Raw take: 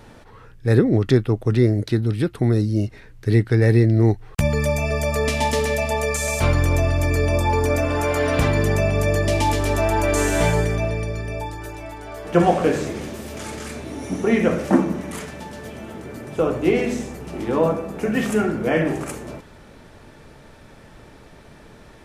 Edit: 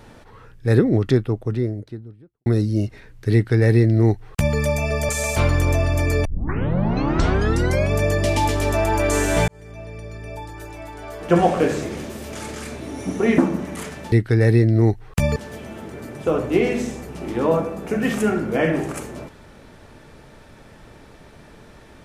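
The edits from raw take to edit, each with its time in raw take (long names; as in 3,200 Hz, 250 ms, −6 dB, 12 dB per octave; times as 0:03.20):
0:00.78–0:02.46: fade out and dull
0:03.33–0:04.57: duplicate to 0:15.48
0:05.09–0:06.13: remove
0:07.29: tape start 1.67 s
0:10.52–0:12.07: fade in
0:14.42–0:14.74: remove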